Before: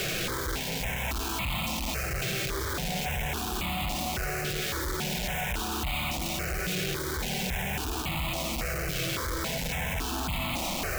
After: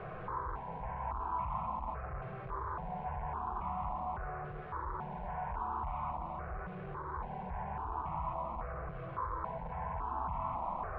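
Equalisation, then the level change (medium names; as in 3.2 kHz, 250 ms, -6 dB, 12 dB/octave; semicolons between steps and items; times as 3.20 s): four-pole ladder low-pass 1.1 kHz, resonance 70%; peaking EQ 290 Hz -11.5 dB 0.95 oct; band-stop 560 Hz, Q 16; +3.5 dB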